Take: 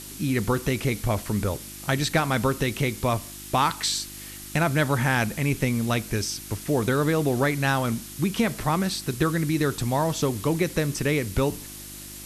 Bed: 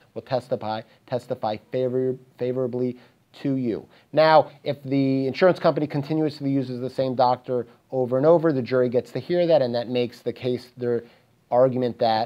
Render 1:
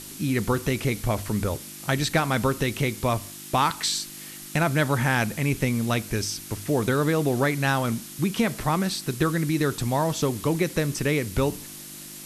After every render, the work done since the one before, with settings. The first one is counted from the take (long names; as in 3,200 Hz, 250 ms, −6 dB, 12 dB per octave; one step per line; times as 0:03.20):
hum removal 50 Hz, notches 2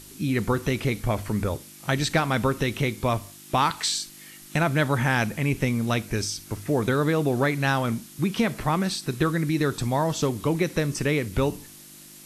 noise reduction from a noise print 6 dB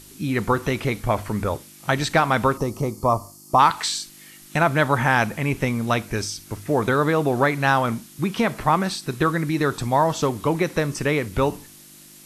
0:02.57–0:03.59: gain on a spectral selection 1,300–4,200 Hz −17 dB
dynamic equaliser 970 Hz, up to +8 dB, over −38 dBFS, Q 0.75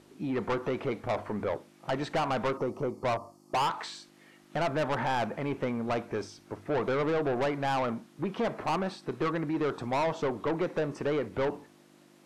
resonant band-pass 580 Hz, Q 0.87
soft clipping −24.5 dBFS, distortion −6 dB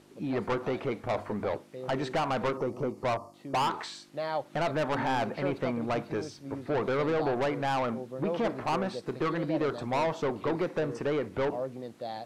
mix in bed −17 dB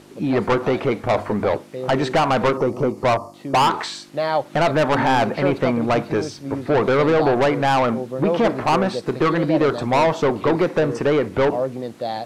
level +11.5 dB